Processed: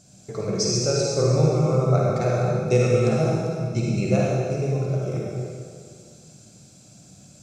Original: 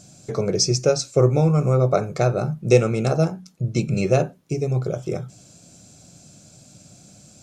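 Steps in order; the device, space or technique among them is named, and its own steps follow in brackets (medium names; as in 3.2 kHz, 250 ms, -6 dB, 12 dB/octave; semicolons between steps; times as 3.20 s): stairwell (reverberation RT60 2.1 s, pre-delay 44 ms, DRR -4.5 dB); trim -7 dB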